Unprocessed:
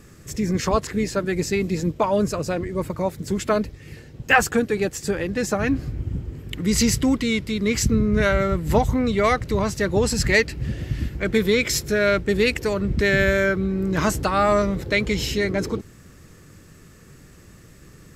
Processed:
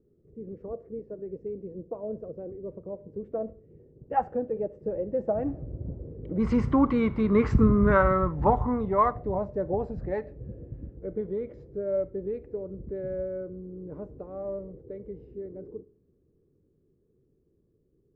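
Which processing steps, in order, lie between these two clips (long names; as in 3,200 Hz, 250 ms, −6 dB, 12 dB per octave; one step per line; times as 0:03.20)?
source passing by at 0:07.35, 15 m/s, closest 8.9 metres
four-comb reverb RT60 0.5 s, combs from 25 ms, DRR 15.5 dB
envelope-controlled low-pass 410–1,100 Hz up, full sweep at −22.5 dBFS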